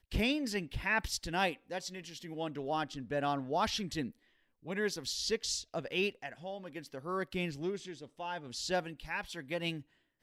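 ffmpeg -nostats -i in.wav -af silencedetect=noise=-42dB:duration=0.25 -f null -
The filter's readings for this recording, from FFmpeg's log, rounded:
silence_start: 4.10
silence_end: 4.66 | silence_duration: 0.56
silence_start: 9.80
silence_end: 10.22 | silence_duration: 0.42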